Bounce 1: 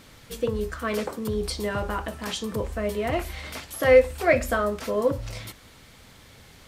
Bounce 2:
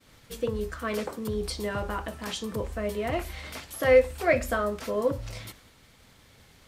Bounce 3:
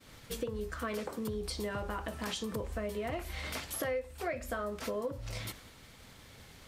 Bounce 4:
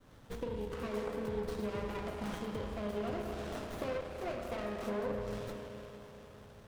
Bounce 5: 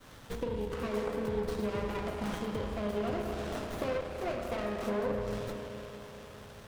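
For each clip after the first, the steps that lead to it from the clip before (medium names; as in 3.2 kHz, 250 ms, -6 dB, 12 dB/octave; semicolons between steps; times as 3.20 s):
expander -46 dBFS; trim -3 dB
compression 6:1, threshold -36 dBFS, peak gain reduction 20.5 dB; trim +2 dB
spring tank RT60 3.9 s, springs 34/38 ms, chirp 65 ms, DRR 1 dB; sliding maximum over 17 samples; trim -3 dB
tape noise reduction on one side only encoder only; trim +4 dB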